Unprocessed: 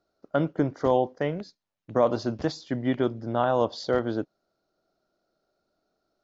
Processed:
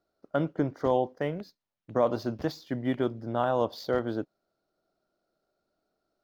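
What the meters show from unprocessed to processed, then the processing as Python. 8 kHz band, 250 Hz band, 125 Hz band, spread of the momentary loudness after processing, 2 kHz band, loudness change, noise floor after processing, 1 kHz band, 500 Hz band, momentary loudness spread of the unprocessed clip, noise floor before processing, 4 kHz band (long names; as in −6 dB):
can't be measured, −3.0 dB, −3.0 dB, 8 LU, −3.0 dB, −3.0 dB, −85 dBFS, −3.0 dB, −3.0 dB, 7 LU, −82 dBFS, −4.0 dB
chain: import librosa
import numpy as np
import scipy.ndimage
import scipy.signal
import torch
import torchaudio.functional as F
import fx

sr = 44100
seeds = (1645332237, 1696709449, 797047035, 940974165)

y = scipy.signal.medfilt(x, 5)
y = y * librosa.db_to_amplitude(-3.0)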